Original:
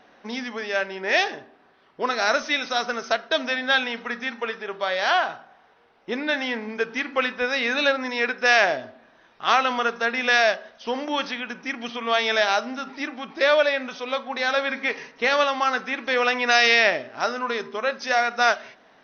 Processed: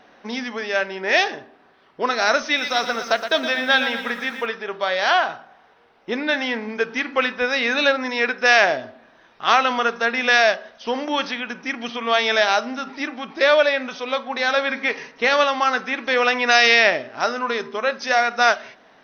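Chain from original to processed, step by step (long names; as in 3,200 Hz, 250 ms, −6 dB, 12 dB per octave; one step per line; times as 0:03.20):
0:02.46–0:04.46: feedback echo at a low word length 117 ms, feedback 55%, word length 8 bits, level −9 dB
level +3 dB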